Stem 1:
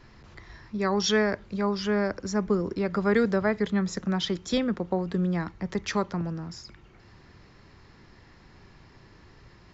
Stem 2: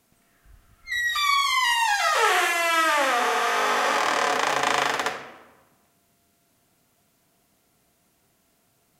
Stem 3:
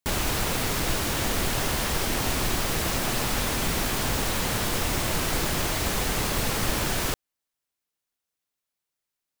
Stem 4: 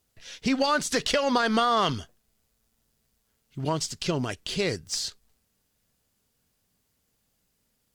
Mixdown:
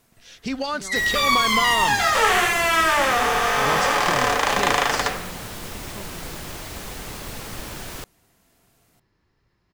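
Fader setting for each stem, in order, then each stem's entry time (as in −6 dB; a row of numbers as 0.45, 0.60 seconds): −16.0, +2.5, −8.0, −3.0 decibels; 0.00, 0.00, 0.90, 0.00 seconds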